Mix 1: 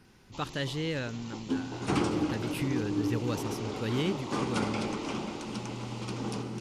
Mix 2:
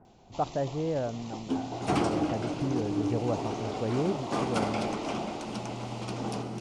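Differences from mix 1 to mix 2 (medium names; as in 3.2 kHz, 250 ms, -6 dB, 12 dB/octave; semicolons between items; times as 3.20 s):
speech: add resonant low-pass 800 Hz, resonance Q 1.6; master: add peaking EQ 680 Hz +12 dB 0.39 oct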